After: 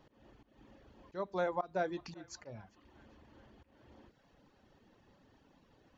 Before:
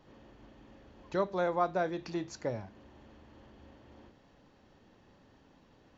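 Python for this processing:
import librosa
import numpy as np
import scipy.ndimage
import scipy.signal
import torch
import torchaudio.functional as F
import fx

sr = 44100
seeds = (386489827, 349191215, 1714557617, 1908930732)

y = fx.dereverb_blind(x, sr, rt60_s=0.75)
y = fx.auto_swell(y, sr, attack_ms=183.0)
y = fx.echo_banded(y, sr, ms=396, feedback_pct=68, hz=1900.0, wet_db=-20.5)
y = F.gain(torch.from_numpy(y), -2.0).numpy()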